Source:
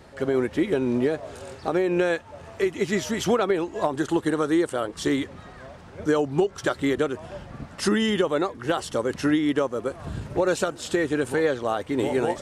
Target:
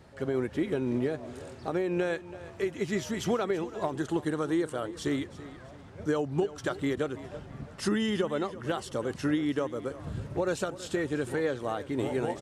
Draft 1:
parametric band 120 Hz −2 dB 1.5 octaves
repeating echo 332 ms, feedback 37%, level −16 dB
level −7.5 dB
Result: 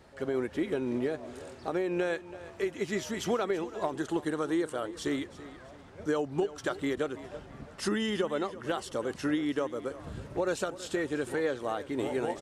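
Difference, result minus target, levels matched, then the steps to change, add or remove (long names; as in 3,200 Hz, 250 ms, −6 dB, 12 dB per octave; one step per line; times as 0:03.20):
125 Hz band −5.0 dB
change: parametric band 120 Hz +5.5 dB 1.5 octaves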